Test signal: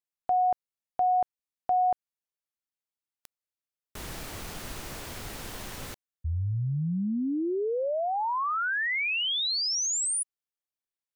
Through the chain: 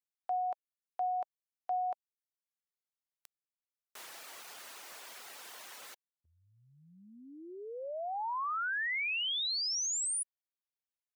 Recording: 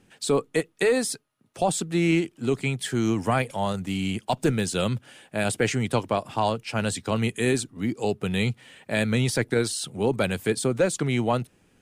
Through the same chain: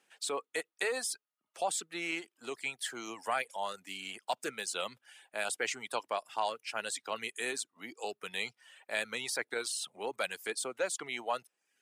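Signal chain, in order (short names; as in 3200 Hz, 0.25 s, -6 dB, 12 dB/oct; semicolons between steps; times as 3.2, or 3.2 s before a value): HPF 700 Hz 12 dB/oct; reverb removal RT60 0.6 s; gain -5.5 dB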